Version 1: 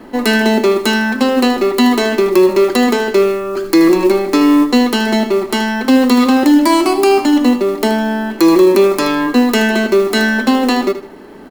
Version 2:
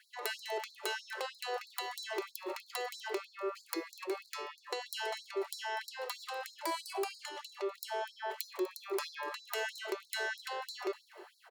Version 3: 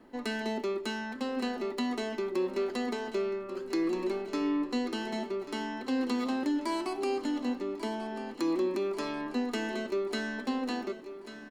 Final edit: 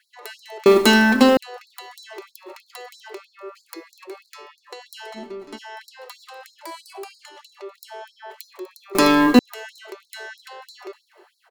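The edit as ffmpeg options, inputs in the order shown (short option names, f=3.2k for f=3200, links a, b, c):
-filter_complex "[0:a]asplit=2[a][b];[1:a]asplit=4[c][d][e][f];[c]atrim=end=0.662[g];[a]atrim=start=0.658:end=1.372[h];[d]atrim=start=1.368:end=5.18[i];[2:a]atrim=start=5.14:end=5.59[j];[e]atrim=start=5.55:end=8.952[k];[b]atrim=start=8.948:end=9.392[l];[f]atrim=start=9.388[m];[g][h]acrossfade=d=0.004:c1=hsin:c2=hsin[n];[n][i]acrossfade=d=0.004:c1=hsin:c2=hsin[o];[o][j]acrossfade=d=0.04:c1=tri:c2=tri[p];[p][k]acrossfade=d=0.04:c1=tri:c2=tri[q];[q][l]acrossfade=d=0.004:c1=hsin:c2=hsin[r];[r][m]acrossfade=d=0.004:c1=hsin:c2=hsin"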